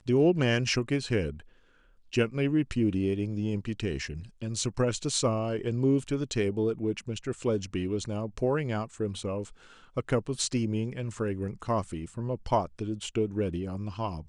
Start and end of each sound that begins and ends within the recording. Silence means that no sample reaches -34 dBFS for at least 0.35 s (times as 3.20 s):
2.13–9.43 s